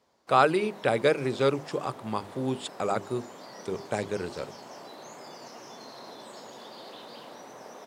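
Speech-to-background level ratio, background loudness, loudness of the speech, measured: 17.0 dB, -45.5 LUFS, -28.5 LUFS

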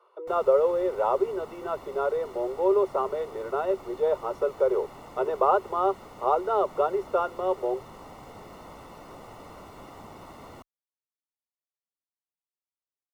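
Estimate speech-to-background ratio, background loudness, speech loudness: 19.0 dB, -46.0 LUFS, -27.0 LUFS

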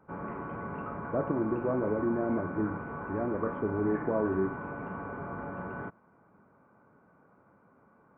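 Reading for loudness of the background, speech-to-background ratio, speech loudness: -39.0 LUFS, 7.0 dB, -32.0 LUFS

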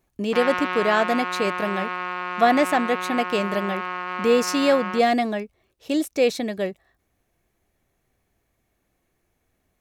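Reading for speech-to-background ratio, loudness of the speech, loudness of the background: 5.5 dB, -23.0 LUFS, -28.5 LUFS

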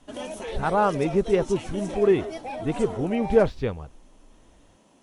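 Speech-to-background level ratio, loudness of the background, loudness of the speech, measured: 10.5 dB, -35.0 LUFS, -24.5 LUFS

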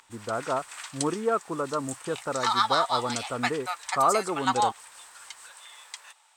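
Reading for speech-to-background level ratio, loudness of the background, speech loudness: -0.5 dB, -29.5 LUFS, -30.0 LUFS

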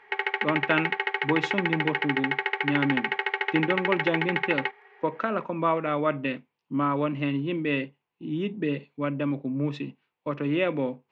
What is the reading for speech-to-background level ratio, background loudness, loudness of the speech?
-1.5 dB, -27.5 LUFS, -29.0 LUFS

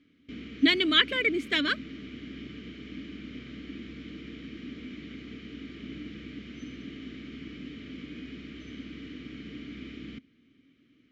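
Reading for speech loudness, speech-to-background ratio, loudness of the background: -24.5 LUFS, 18.0 dB, -42.5 LUFS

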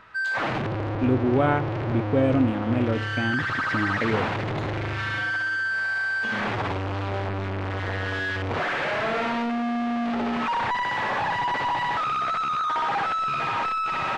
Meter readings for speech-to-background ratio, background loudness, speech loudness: 1.0 dB, -26.5 LUFS, -25.5 LUFS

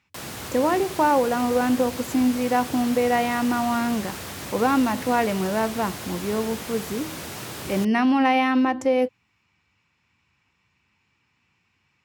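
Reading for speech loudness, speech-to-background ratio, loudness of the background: -23.0 LUFS, 11.0 dB, -34.0 LUFS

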